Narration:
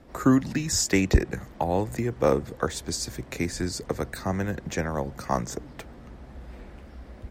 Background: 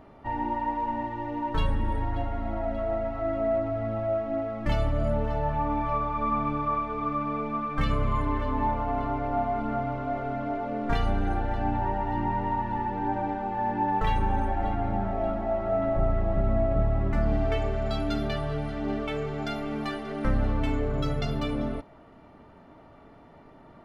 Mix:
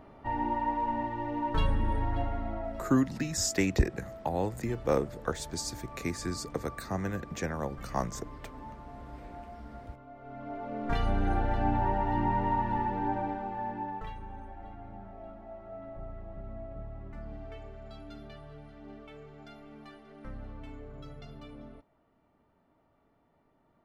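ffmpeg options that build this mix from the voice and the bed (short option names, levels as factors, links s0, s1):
-filter_complex "[0:a]adelay=2650,volume=0.531[s0];[1:a]volume=7.5,afade=t=out:st=2.25:d=0.78:silence=0.125893,afade=t=in:st=10.17:d=1.21:silence=0.112202,afade=t=out:st=12.74:d=1.41:silence=0.133352[s1];[s0][s1]amix=inputs=2:normalize=0"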